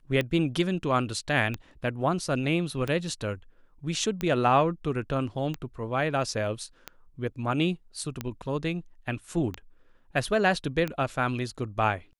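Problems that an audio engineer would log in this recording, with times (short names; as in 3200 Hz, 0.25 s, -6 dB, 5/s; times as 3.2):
tick 45 rpm -16 dBFS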